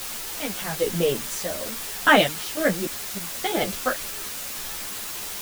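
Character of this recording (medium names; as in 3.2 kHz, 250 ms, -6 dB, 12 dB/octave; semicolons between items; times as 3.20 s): random-step tremolo, depth 100%; a quantiser's noise floor 6-bit, dither triangular; a shimmering, thickened sound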